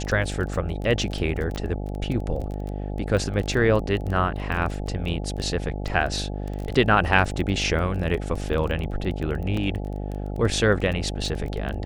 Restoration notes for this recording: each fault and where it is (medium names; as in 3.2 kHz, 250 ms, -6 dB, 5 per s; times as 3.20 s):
buzz 50 Hz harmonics 17 -30 dBFS
crackle 16 per s -28 dBFS
1.56 s: pop -18 dBFS
9.57 s: dropout 3.2 ms